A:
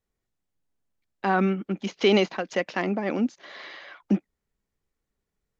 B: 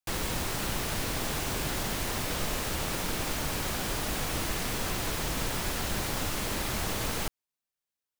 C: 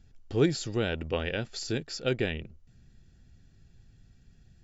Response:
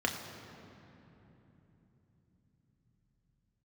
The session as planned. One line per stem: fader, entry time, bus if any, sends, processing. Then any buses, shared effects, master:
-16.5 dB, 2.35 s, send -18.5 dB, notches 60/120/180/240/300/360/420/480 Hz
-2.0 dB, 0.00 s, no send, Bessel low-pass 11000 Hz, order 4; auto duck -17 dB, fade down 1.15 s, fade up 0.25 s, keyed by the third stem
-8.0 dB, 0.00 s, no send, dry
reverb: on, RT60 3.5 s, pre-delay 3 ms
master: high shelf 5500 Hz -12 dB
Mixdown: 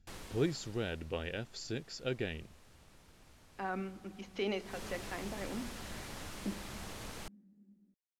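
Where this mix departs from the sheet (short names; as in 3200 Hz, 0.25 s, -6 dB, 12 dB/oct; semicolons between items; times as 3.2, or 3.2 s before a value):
stem B -2.0 dB -> -13.5 dB; master: missing high shelf 5500 Hz -12 dB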